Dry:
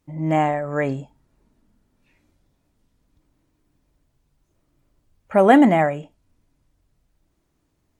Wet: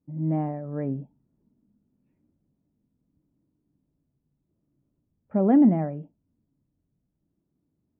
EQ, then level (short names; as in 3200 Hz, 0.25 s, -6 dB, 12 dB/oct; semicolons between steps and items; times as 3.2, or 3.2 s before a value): band-pass 200 Hz, Q 1.4; air absorption 190 m; 0.0 dB